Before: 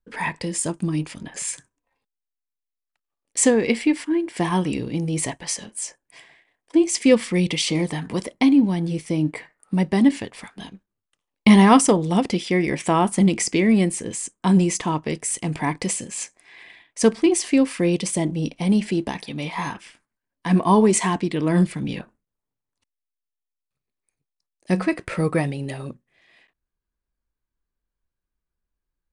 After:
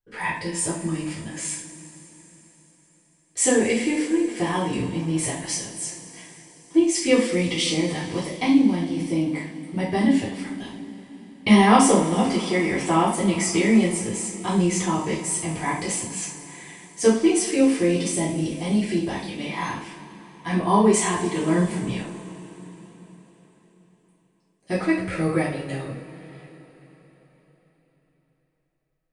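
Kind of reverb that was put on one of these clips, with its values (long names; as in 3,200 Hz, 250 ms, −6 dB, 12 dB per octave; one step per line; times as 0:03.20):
coupled-rooms reverb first 0.43 s, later 4.4 s, from −20 dB, DRR −8.5 dB
level −9 dB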